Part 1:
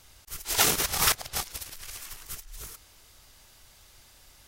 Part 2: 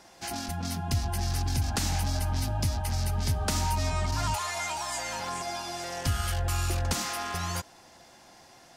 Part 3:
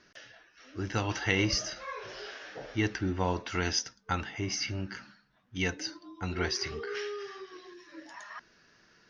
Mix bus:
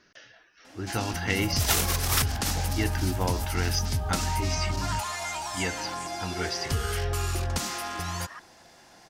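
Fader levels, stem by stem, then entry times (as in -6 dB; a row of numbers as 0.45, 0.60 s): -2.5, -0.5, 0.0 dB; 1.10, 0.65, 0.00 s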